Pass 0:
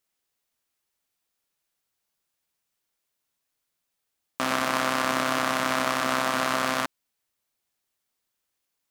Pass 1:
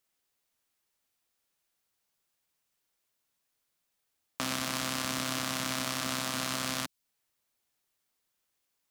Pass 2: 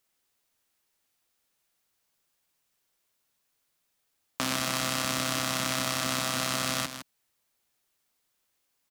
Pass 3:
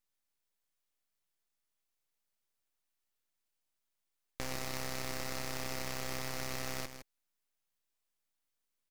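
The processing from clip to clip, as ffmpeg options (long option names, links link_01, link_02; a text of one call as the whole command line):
ffmpeg -i in.wav -filter_complex "[0:a]acrossover=split=220|3000[link_01][link_02][link_03];[link_02]acompressor=threshold=-37dB:ratio=4[link_04];[link_01][link_04][link_03]amix=inputs=3:normalize=0" out.wav
ffmpeg -i in.wav -af "aecho=1:1:160:0.316,volume=3.5dB" out.wav
ffmpeg -i in.wav -af "aeval=exprs='abs(val(0))':channel_layout=same,volume=-8dB" out.wav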